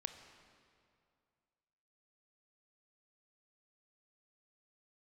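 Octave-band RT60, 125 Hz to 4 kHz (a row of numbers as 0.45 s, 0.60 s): 2.5 s, 2.4 s, 2.4 s, 2.3 s, 2.0 s, 1.8 s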